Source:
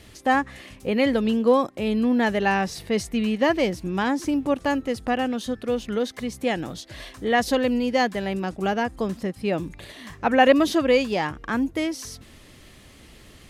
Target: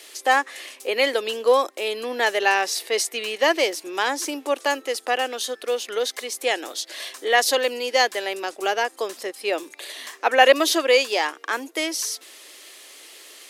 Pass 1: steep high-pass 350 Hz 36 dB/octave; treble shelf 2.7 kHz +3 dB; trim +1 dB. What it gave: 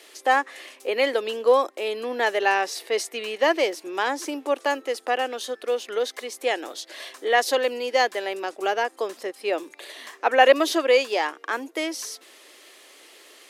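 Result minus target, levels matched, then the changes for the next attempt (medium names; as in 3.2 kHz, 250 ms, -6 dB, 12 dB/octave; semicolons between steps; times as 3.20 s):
4 kHz band -3.5 dB
change: treble shelf 2.7 kHz +11.5 dB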